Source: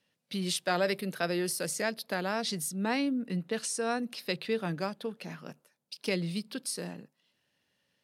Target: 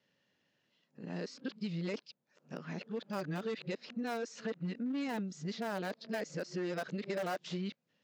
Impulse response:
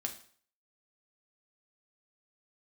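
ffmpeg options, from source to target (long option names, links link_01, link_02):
-filter_complex "[0:a]areverse,aresample=16000,volume=26.5dB,asoftclip=hard,volume=-26.5dB,aresample=44100,acrossover=split=1300|2600[link_01][link_02][link_03];[link_01]acompressor=threshold=-37dB:ratio=4[link_04];[link_02]acompressor=threshold=-48dB:ratio=4[link_05];[link_03]acompressor=threshold=-50dB:ratio=4[link_06];[link_04][link_05][link_06]amix=inputs=3:normalize=0,acrossover=split=850|1000[link_07][link_08][link_09];[link_08]acrusher=bits=7:mix=0:aa=0.000001[link_10];[link_09]tiltshelf=frequency=1300:gain=6.5[link_11];[link_07][link_10][link_11]amix=inputs=3:normalize=0,highpass=120,volume=2dB"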